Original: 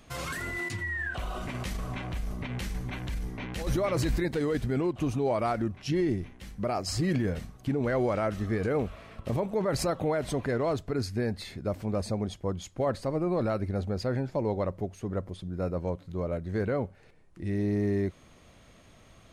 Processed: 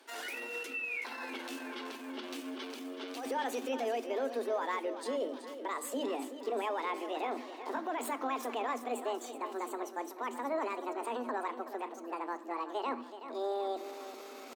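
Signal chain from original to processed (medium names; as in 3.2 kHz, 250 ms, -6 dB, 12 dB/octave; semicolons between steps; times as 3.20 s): gliding tape speed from 134% -> 198%; Chebyshev high-pass 240 Hz, order 10; treble shelf 6.5 kHz -4 dB; hum notches 50/100/150/200/250/300/350 Hz; reverse; upward compressor, threshold -35 dBFS; reverse; peak limiter -23 dBFS, peak gain reduction 5.5 dB; tempo 0.8×; feedback delay 376 ms, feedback 53%, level -11.5 dB; on a send at -11.5 dB: reverberation RT60 0.75 s, pre-delay 5 ms; on the sum: trim -4 dB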